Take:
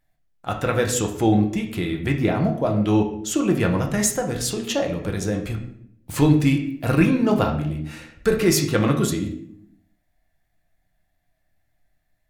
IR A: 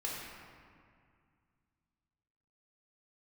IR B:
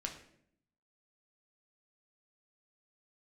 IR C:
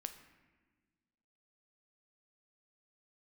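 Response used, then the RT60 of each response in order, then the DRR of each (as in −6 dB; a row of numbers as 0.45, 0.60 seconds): B; 2.1, 0.65, 1.4 seconds; −5.0, 1.5, 7.5 decibels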